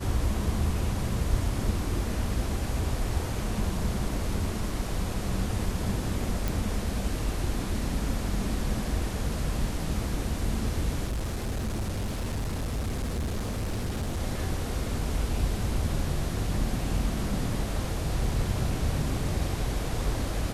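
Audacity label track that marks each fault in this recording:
6.480000	6.480000	pop
11.060000	14.190000	clipped -26.5 dBFS

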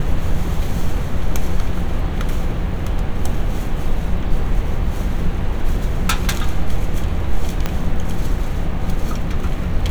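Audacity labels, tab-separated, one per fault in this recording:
7.660000	7.660000	pop -6 dBFS

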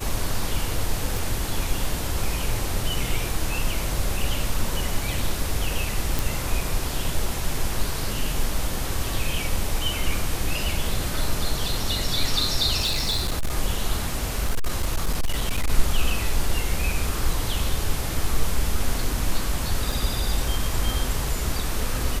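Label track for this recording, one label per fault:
1.170000	1.170000	pop
6.190000	6.190000	pop
12.800000	13.550000	clipped -19.5 dBFS
14.140000	15.700000	clipped -17.5 dBFS
19.920000	19.920000	gap 3.3 ms

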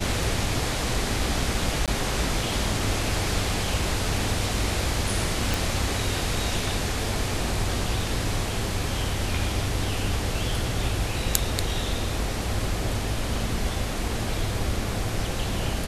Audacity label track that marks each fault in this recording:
1.860000	1.880000	gap 17 ms
5.540000	5.540000	pop

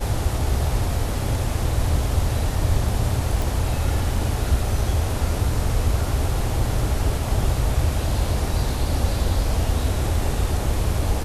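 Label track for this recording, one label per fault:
3.420000	3.420000	pop

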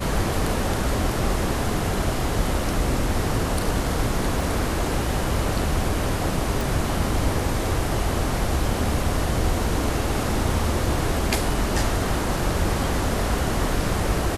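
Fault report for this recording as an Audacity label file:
4.410000	4.410000	gap 2 ms
6.610000	6.610000	pop

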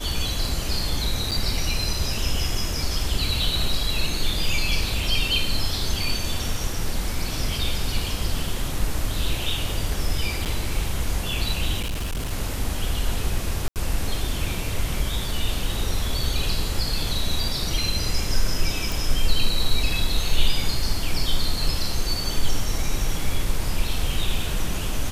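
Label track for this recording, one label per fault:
1.310000	1.320000	gap 7.2 ms
10.450000	10.460000	gap 8.3 ms
11.800000	12.330000	clipped -23.5 dBFS
13.680000	13.760000	gap 78 ms
18.920000	18.920000	pop

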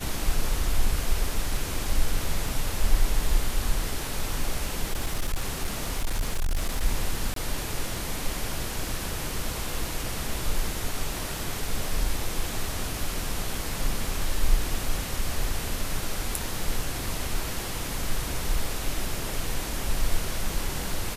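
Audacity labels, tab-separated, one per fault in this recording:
2.490000	2.490000	gap 2.3 ms
4.930000	6.810000	clipped -21.5 dBFS
7.340000	7.360000	gap 23 ms

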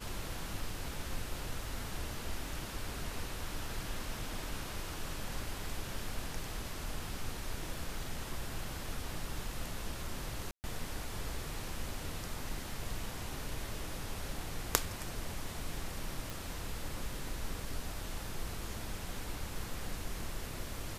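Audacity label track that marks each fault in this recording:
10.510000	10.640000	gap 0.129 s
16.300000	16.300000	pop

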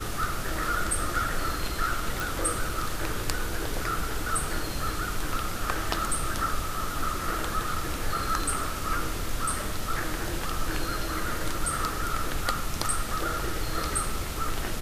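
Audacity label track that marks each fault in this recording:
2.200000	2.200000	pop

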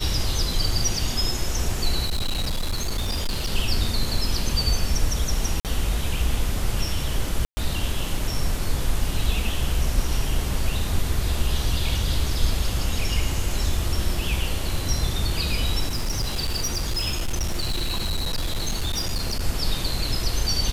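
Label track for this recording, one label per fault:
2.050000	3.510000	clipped -20.5 dBFS
5.600000	5.650000	gap 48 ms
7.450000	7.570000	gap 0.12 s
15.880000	19.440000	clipped -20.5 dBFS

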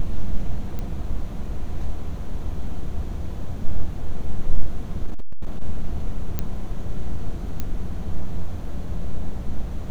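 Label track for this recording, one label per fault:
0.790000	0.790000	pop -17 dBFS
5.060000	5.620000	clipped -17 dBFS
6.390000	6.390000	pop -11 dBFS
7.600000	7.600000	pop -12 dBFS

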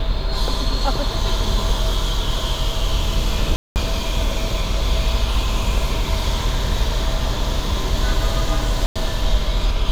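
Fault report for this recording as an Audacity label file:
3.560000	3.760000	gap 0.199 s
8.860000	8.960000	gap 96 ms

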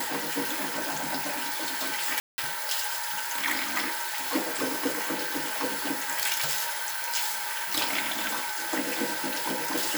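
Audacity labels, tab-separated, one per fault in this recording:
2.200000	2.380000	gap 0.18 s

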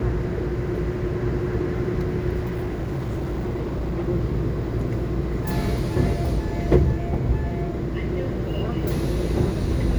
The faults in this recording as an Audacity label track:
2.390000	4.090000	clipped -22.5 dBFS
5.620000	5.620000	gap 2.5 ms

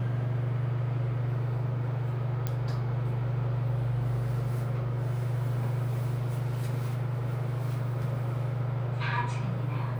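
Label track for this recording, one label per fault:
2.470000	2.470000	pop -17 dBFS

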